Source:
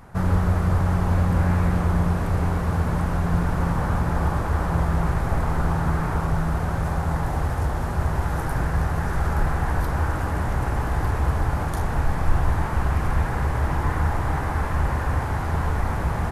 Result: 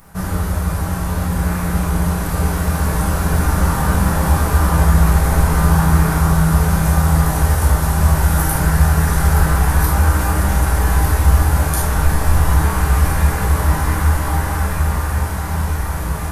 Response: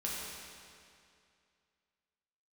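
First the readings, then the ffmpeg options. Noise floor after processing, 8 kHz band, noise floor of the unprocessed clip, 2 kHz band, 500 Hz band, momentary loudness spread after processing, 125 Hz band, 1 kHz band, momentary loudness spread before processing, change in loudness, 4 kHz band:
-22 dBFS, +18.5 dB, -26 dBFS, +7.5 dB, +5.0 dB, 6 LU, +7.0 dB, +6.0 dB, 4 LU, +7.5 dB, +12.0 dB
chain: -filter_complex "[0:a]aemphasis=mode=production:type=75fm,dynaudnorm=f=280:g=17:m=2[s0];[1:a]atrim=start_sample=2205,atrim=end_sample=3528[s1];[s0][s1]afir=irnorm=-1:irlink=0,volume=1.19"

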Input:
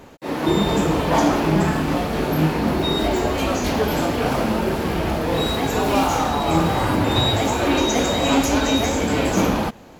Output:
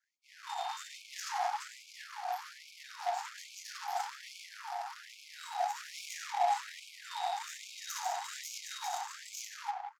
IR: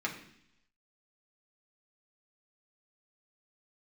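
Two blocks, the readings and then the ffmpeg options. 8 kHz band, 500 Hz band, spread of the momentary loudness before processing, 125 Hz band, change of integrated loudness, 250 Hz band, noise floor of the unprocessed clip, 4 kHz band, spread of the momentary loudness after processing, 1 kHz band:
-13.5 dB, -24.5 dB, 4 LU, under -40 dB, -19.0 dB, under -40 dB, -35 dBFS, -19.0 dB, 12 LU, -13.0 dB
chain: -filter_complex "[0:a]asplit=2[s0][s1];[s1]alimiter=limit=0.251:level=0:latency=1:release=116,volume=0.75[s2];[s0][s2]amix=inputs=2:normalize=0,asuperstop=centerf=1800:order=8:qfactor=0.54,equalizer=f=3900:w=4.1:g=-13.5,asplit=2[s3][s4];[s4]adelay=180,highpass=300,lowpass=3400,asoftclip=type=hard:threshold=0.211,volume=0.447[s5];[s3][s5]amix=inputs=2:normalize=0[s6];[1:a]atrim=start_sample=2205[s7];[s6][s7]afir=irnorm=-1:irlink=0,adynamicsmooth=sensitivity=1:basefreq=900,aemphasis=mode=production:type=50kf,afftfilt=real='re*gte(b*sr/1024,680*pow(2200/680,0.5+0.5*sin(2*PI*1.2*pts/sr)))':imag='im*gte(b*sr/1024,680*pow(2200/680,0.5+0.5*sin(2*PI*1.2*pts/sr)))':win_size=1024:overlap=0.75,volume=0.376"

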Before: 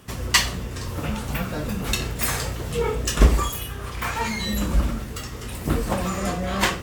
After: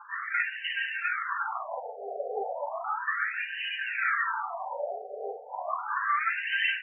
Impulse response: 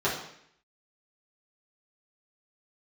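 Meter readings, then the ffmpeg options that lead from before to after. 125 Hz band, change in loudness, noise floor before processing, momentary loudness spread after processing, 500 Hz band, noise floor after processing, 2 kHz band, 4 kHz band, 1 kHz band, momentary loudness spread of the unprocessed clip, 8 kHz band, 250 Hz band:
under -40 dB, -6.0 dB, -34 dBFS, 11 LU, -7.0 dB, -42 dBFS, +1.0 dB, -10.0 dB, -1.0 dB, 11 LU, under -40 dB, under -30 dB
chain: -filter_complex "[0:a]crystalizer=i=7.5:c=0,highpass=220,acrossover=split=1100|3200[s0][s1][s2];[s0]acompressor=threshold=0.0224:ratio=4[s3];[s1]acompressor=threshold=0.0178:ratio=4[s4];[s2]acompressor=threshold=0.0708:ratio=4[s5];[s3][s4][s5]amix=inputs=3:normalize=0,bandreject=f=60:t=h:w=6,bandreject=f=120:t=h:w=6,bandreject=f=180:t=h:w=6,bandreject=f=240:t=h:w=6,bandreject=f=300:t=h:w=6,bandreject=f=360:t=h:w=6,bandreject=f=420:t=h:w=6,bandreject=f=480:t=h:w=6,bandreject=f=540:t=h:w=6,bandreject=f=600:t=h:w=6,aphaser=in_gain=1:out_gain=1:delay=3.5:decay=0.75:speed=0.57:type=triangular,aecho=1:1:303:0.376[s6];[1:a]atrim=start_sample=2205,atrim=end_sample=3528[s7];[s6][s7]afir=irnorm=-1:irlink=0,afftfilt=real='re*between(b*sr/1024,560*pow(2200/560,0.5+0.5*sin(2*PI*0.34*pts/sr))/1.41,560*pow(2200/560,0.5+0.5*sin(2*PI*0.34*pts/sr))*1.41)':imag='im*between(b*sr/1024,560*pow(2200/560,0.5+0.5*sin(2*PI*0.34*pts/sr))/1.41,560*pow(2200/560,0.5+0.5*sin(2*PI*0.34*pts/sr))*1.41)':win_size=1024:overlap=0.75,volume=0.398"

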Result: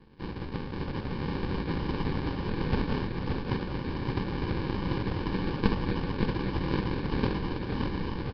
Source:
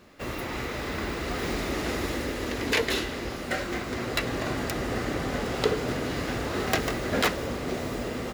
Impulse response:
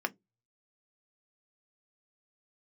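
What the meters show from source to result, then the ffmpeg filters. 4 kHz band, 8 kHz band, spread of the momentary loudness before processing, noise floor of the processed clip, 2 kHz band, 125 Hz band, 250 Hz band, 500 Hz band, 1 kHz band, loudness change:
-8.5 dB, under -25 dB, 6 LU, -37 dBFS, -8.5 dB, +4.0 dB, +0.5 dB, -5.5 dB, -3.5 dB, -2.5 dB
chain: -af "bandreject=f=132.8:t=h:w=4,bandreject=f=265.6:t=h:w=4,bandreject=f=398.4:t=h:w=4,bandreject=f=531.2:t=h:w=4,bandreject=f=664:t=h:w=4,bandreject=f=796.8:t=h:w=4,bandreject=f=929.6:t=h:w=4,bandreject=f=1062.4:t=h:w=4,bandreject=f=1195.2:t=h:w=4,aeval=exprs='val(0)*sin(2*PI*1100*n/s)':c=same,aresample=16000,acrusher=samples=24:mix=1:aa=0.000001,aresample=44100,aecho=1:1:571|1142|1713|2284:0.562|0.197|0.0689|0.0241,volume=1.19" -ar 11025 -c:a nellymoser

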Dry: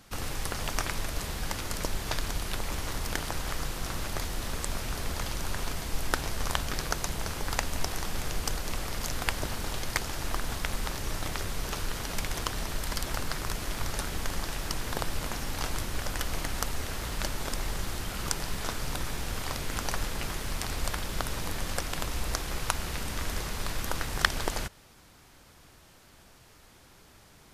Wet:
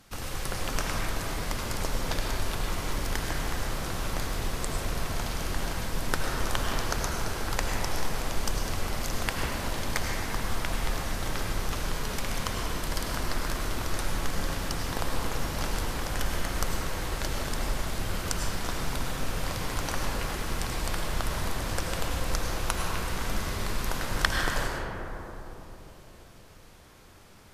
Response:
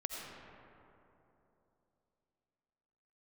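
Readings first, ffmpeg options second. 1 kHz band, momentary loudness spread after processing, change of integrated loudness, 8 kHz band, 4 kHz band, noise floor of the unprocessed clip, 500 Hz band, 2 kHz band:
+2.5 dB, 3 LU, +1.5 dB, 0.0 dB, +0.5 dB, -56 dBFS, +3.5 dB, +1.5 dB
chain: -filter_complex "[1:a]atrim=start_sample=2205,asetrate=36603,aresample=44100[s0];[0:a][s0]afir=irnorm=-1:irlink=0"

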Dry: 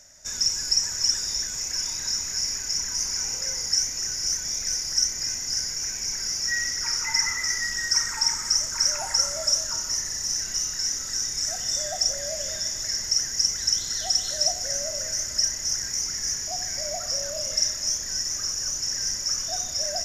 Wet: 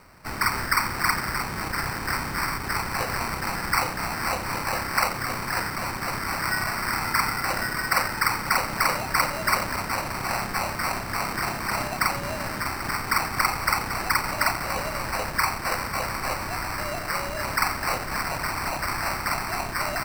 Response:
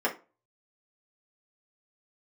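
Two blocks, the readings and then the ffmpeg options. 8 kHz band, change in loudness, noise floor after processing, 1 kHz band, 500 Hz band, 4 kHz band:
-11.5 dB, -2.0 dB, -32 dBFS, +16.5 dB, +6.0 dB, -8.5 dB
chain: -filter_complex "[0:a]asplit=2[s0][s1];[s1]adelay=87.46,volume=0.251,highshelf=f=4000:g=-1.97[s2];[s0][s2]amix=inputs=2:normalize=0,acrusher=samples=13:mix=1:aa=0.000001"

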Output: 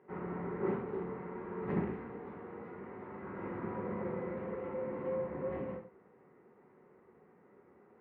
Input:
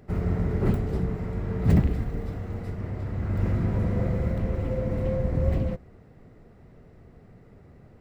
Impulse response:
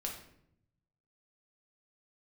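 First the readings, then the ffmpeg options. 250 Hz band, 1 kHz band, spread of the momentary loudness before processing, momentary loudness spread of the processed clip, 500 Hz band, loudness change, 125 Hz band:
-11.0 dB, -2.5 dB, 11 LU, 11 LU, -5.5 dB, -12.5 dB, -20.5 dB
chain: -filter_complex "[0:a]highpass=330,equalizer=f=380:t=q:w=4:g=4,equalizer=f=650:t=q:w=4:g=-9,equalizer=f=970:t=q:w=4:g=8,lowpass=f=2200:w=0.5412,lowpass=f=2200:w=1.3066[s0];[1:a]atrim=start_sample=2205,atrim=end_sample=6174[s1];[s0][s1]afir=irnorm=-1:irlink=0,volume=0.562"

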